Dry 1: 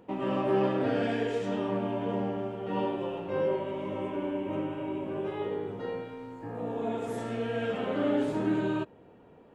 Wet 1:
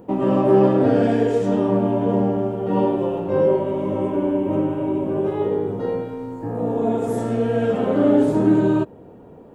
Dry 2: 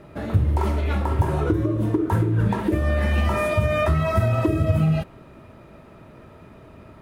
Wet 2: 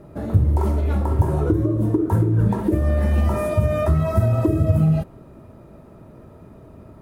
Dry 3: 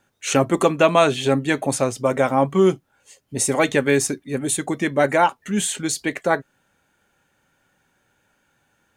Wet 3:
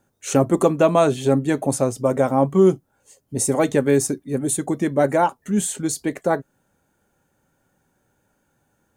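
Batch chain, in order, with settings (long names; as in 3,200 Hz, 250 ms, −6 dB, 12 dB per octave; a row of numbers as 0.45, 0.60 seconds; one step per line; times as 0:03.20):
parametric band 2,600 Hz −12.5 dB 2.3 octaves
loudness normalisation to −20 LKFS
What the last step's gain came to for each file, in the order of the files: +13.0, +3.0, +2.5 decibels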